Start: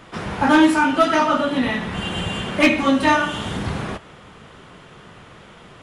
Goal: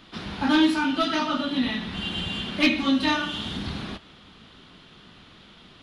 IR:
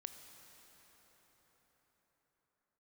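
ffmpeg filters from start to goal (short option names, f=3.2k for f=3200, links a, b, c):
-af "equalizer=f=125:t=o:w=1:g=-6,equalizer=f=250:t=o:w=1:g=4,equalizer=f=500:t=o:w=1:g=-8,equalizer=f=1k:t=o:w=1:g=-4,equalizer=f=2k:t=o:w=1:g=-4,equalizer=f=4k:t=o:w=1:g=11,equalizer=f=8k:t=o:w=1:g=-10,volume=-4.5dB"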